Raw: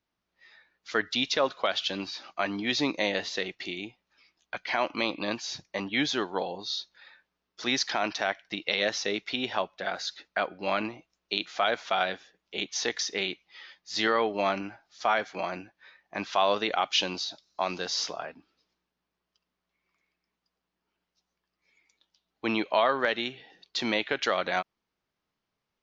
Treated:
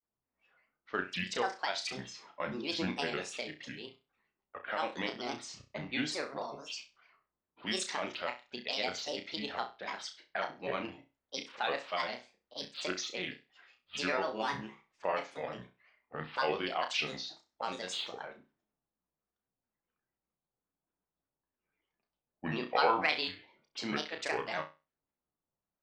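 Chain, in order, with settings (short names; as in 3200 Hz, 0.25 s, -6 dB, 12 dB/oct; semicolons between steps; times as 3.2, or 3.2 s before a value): low-pass opened by the level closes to 1200 Hz, open at -26 dBFS; spectral gain 22.69–23.35, 710–3900 Hz +6 dB; grains, spray 18 ms, pitch spread up and down by 7 st; on a send: flutter echo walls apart 5.6 m, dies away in 0.28 s; on the sum: gain -7 dB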